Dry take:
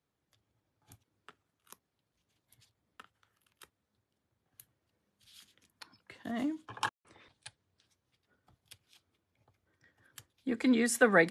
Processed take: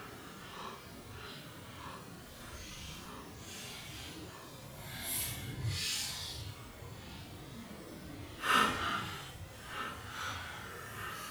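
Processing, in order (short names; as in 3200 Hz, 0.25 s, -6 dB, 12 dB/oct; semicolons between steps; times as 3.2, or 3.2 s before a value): analogue delay 0.173 s, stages 4096, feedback 65%, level -20 dB; power-law curve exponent 0.7; Paulstretch 7.2×, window 0.05 s, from 1.81; gain +12.5 dB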